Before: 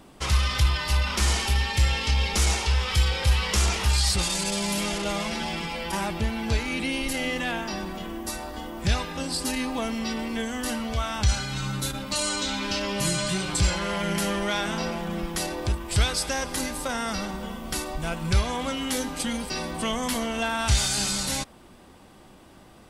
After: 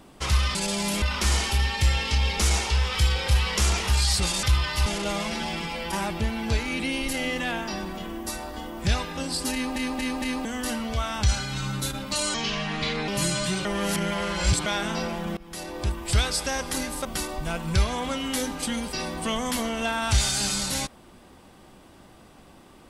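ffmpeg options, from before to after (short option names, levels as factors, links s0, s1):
-filter_complex "[0:a]asplit=15[s0][s1][s2][s3][s4][s5][s6][s7][s8][s9][s10][s11][s12][s13][s14];[s0]atrim=end=0.552[s15];[s1]atrim=start=4.388:end=4.862[s16];[s2]atrim=start=0.978:end=4.392[s17];[s3]atrim=start=0.548:end=0.982[s18];[s4]atrim=start=4.858:end=9.762[s19];[s5]atrim=start=9.528:end=9.762[s20];[s6]atrim=start=9.528:end=9.762[s21];[s7]atrim=start=9.528:end=9.762[s22];[s8]atrim=start=10.448:end=12.344[s23];[s9]atrim=start=12.34:end=12.91,asetpts=PTS-STARTPTS,asetrate=33957,aresample=44100,atrim=end_sample=32645,asetpts=PTS-STARTPTS[s24];[s10]atrim=start=12.906:end=13.482[s25];[s11]atrim=start=13.478:end=14.492,asetpts=PTS-STARTPTS,areverse[s26];[s12]atrim=start=14.488:end=15.2,asetpts=PTS-STARTPTS,afade=t=out:st=0.708:d=0.004:c=hsin:silence=0.0891251[s27];[s13]atrim=start=15.2:end=16.882,asetpts=PTS-STARTPTS,afade=t=in:d=0.57:silence=0.0891251[s28];[s14]atrim=start=17.618[s29];[s15][s16]acrossfade=d=0.004:c1=hsin:c2=hsin[s30];[s30][s17]acrossfade=d=0.004:c1=hsin:c2=hsin[s31];[s31][s18]acrossfade=d=0.004:c1=hsin:c2=hsin[s32];[s32][s19]acrossfade=d=0.004:c1=hsin:c2=hsin[s33];[s33][s20]acrossfade=d=0.004:c1=hsin:c2=hsin[s34];[s34][s21]acrossfade=d=0.004:c1=hsin:c2=hsin[s35];[s35][s22]acrossfade=d=0.004:c1=hsin:c2=hsin[s36];[s36][s23]acrossfade=d=0.004:c1=hsin:c2=hsin[s37];[s37][s24]acrossfade=d=0.004:c1=hsin:c2=hsin[s38];[s38][s25]acrossfade=d=0.004:c1=hsin:c2=hsin[s39];[s39][s26]acrossfade=d=0.004:c1=hsin:c2=hsin[s40];[s27][s28]concat=n=2:v=0:a=1[s41];[s40][s41]acrossfade=d=0.004:c1=hsin:c2=hsin[s42];[s42][s29]acrossfade=d=0.004:c1=hsin:c2=hsin"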